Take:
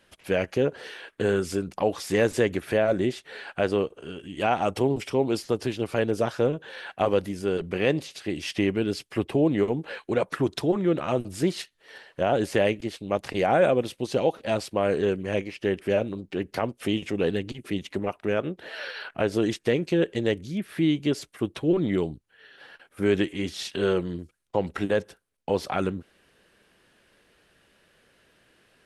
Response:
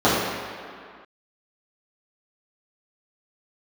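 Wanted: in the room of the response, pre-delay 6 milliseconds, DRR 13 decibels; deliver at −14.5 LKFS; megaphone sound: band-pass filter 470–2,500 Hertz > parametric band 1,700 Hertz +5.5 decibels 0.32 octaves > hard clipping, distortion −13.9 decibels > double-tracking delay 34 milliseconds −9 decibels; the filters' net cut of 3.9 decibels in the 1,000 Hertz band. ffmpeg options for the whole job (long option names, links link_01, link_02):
-filter_complex "[0:a]equalizer=frequency=1000:width_type=o:gain=-5.5,asplit=2[link_01][link_02];[1:a]atrim=start_sample=2205,adelay=6[link_03];[link_02][link_03]afir=irnorm=-1:irlink=0,volume=-37dB[link_04];[link_01][link_04]amix=inputs=2:normalize=0,highpass=470,lowpass=2500,equalizer=frequency=1700:width_type=o:width=0.32:gain=5.5,asoftclip=type=hard:threshold=-22.5dB,asplit=2[link_05][link_06];[link_06]adelay=34,volume=-9dB[link_07];[link_05][link_07]amix=inputs=2:normalize=0,volume=17dB"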